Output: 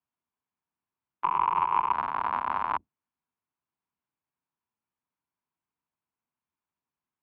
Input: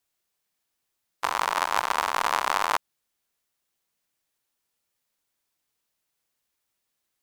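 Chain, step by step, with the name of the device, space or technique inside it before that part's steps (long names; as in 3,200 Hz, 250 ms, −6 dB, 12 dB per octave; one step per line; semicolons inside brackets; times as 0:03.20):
sub-octave bass pedal (sub-octave generator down 1 octave, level +4 dB; loudspeaker in its box 73–2,400 Hz, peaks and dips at 110 Hz −6 dB, 250 Hz +5 dB, 530 Hz −7 dB, 980 Hz +8 dB, 1,900 Hz −6 dB)
0:01.24–0:01.93: EQ curve with evenly spaced ripples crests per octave 0.73, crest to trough 11 dB
level −7.5 dB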